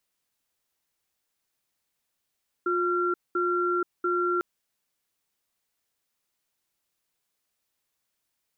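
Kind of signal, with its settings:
tone pair in a cadence 355 Hz, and 1,370 Hz, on 0.48 s, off 0.21 s, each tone −25.5 dBFS 1.75 s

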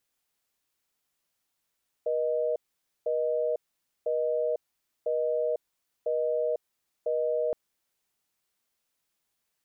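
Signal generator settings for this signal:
call progress tone busy tone, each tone −27.5 dBFS 5.47 s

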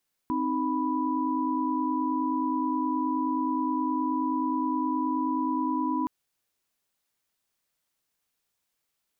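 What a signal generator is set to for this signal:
held notes C4/D#4/B5 sine, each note −29 dBFS 5.77 s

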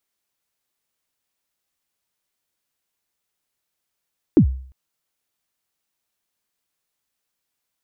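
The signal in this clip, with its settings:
synth kick length 0.35 s, from 370 Hz, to 65 Hz, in 89 ms, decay 0.52 s, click off, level −5.5 dB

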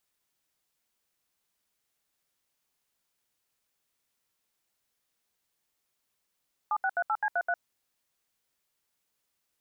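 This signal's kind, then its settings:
touch tones "7638C33", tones 56 ms, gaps 73 ms, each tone −27.5 dBFS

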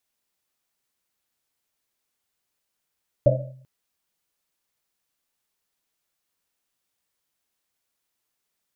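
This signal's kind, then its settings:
drum after Risset length 0.39 s, pitch 130 Hz, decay 0.73 s, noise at 580 Hz, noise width 110 Hz, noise 60%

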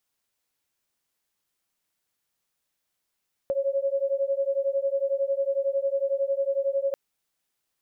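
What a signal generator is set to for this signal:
two tones that beat 545 Hz, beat 11 Hz, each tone −26 dBFS 3.44 s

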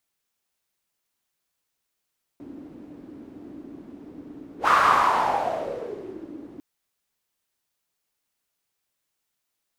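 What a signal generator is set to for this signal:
pass-by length 4.20 s, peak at 0:02.28, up 0.10 s, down 1.88 s, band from 290 Hz, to 1,200 Hz, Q 6.5, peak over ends 25 dB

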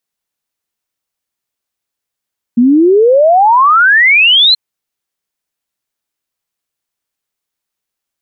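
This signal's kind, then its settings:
exponential sine sweep 230 Hz → 4,200 Hz 1.98 s −4 dBFS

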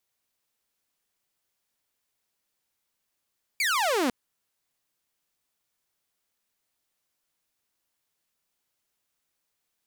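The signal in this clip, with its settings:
single falling chirp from 2,400 Hz, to 230 Hz, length 0.50 s saw, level −20 dB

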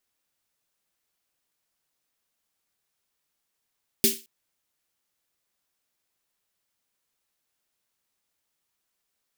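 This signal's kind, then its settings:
synth snare length 0.22 s, tones 230 Hz, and 390 Hz, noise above 2,500 Hz, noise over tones 5 dB, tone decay 0.24 s, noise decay 0.30 s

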